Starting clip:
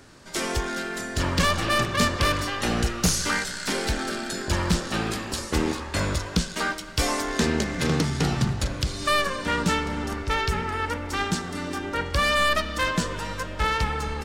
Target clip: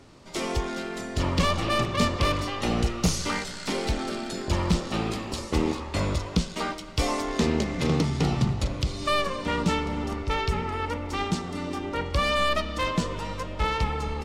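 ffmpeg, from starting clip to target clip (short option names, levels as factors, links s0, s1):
-af "lowpass=f=3600:p=1,equalizer=f=1600:t=o:w=0.33:g=-11.5"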